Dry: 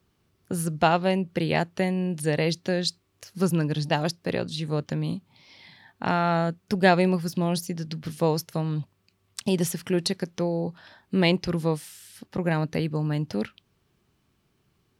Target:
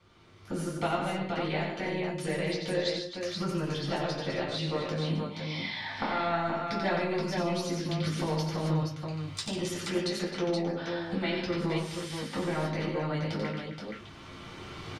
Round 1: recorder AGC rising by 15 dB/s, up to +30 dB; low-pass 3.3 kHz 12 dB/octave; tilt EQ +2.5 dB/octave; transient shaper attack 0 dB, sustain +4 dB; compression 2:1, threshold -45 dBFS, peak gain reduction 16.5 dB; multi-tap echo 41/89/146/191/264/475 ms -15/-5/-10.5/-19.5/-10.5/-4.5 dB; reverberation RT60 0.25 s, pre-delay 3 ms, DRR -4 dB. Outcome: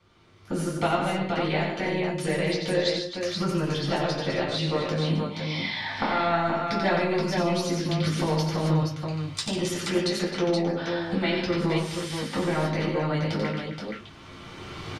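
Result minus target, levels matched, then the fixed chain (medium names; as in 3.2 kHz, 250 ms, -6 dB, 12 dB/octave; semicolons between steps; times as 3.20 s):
compression: peak gain reduction -5 dB
recorder AGC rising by 15 dB/s, up to +30 dB; low-pass 3.3 kHz 12 dB/octave; tilt EQ +2.5 dB/octave; transient shaper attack 0 dB, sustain +4 dB; compression 2:1, threshold -55.5 dBFS, peak gain reduction 22 dB; multi-tap echo 41/89/146/191/264/475 ms -15/-5/-10.5/-19.5/-10.5/-4.5 dB; reverberation RT60 0.25 s, pre-delay 3 ms, DRR -4 dB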